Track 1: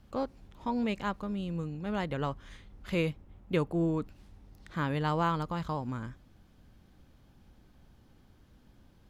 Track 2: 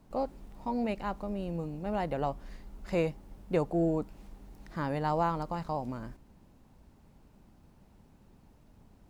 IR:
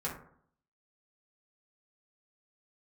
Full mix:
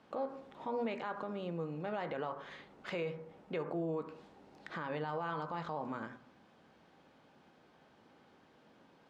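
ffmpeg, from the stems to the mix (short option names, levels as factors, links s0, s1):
-filter_complex "[0:a]volume=1.26,asplit=2[s0][s1];[s1]volume=0.266[s2];[1:a]acompressor=threshold=0.00631:ratio=1.5,volume=0.944,asplit=2[s3][s4];[s4]apad=whole_len=401234[s5];[s0][s5]sidechaincompress=threshold=0.00794:ratio=8:attack=8:release=110[s6];[2:a]atrim=start_sample=2205[s7];[s2][s7]afir=irnorm=-1:irlink=0[s8];[s6][s3][s8]amix=inputs=3:normalize=0,highpass=130,lowpass=7100,bass=f=250:g=-15,treble=f=4000:g=-8,alimiter=level_in=1.68:limit=0.0631:level=0:latency=1:release=84,volume=0.596"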